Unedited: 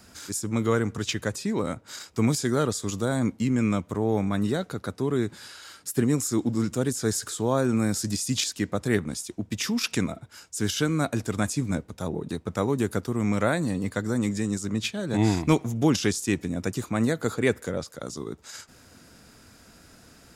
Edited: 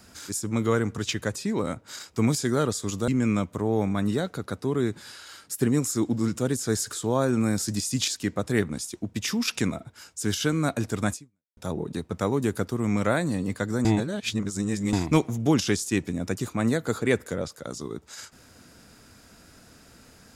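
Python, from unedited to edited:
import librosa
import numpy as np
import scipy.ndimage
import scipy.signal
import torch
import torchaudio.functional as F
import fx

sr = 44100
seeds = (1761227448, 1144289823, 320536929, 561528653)

y = fx.edit(x, sr, fx.cut(start_s=3.08, length_s=0.36),
    fx.fade_out_span(start_s=11.49, length_s=0.44, curve='exp'),
    fx.reverse_span(start_s=14.21, length_s=1.08), tone=tone)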